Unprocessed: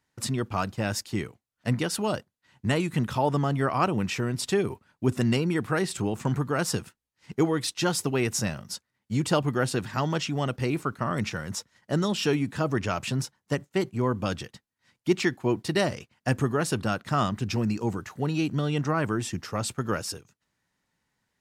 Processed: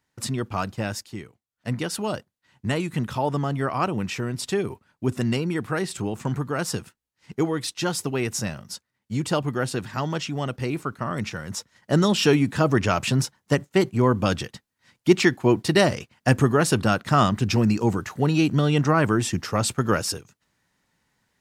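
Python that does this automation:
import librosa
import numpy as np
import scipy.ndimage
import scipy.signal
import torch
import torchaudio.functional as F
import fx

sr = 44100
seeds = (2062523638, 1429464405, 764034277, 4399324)

y = fx.gain(x, sr, db=fx.line((0.81, 1.0), (1.24, -7.5), (1.85, 0.0), (11.42, 0.0), (11.99, 6.5)))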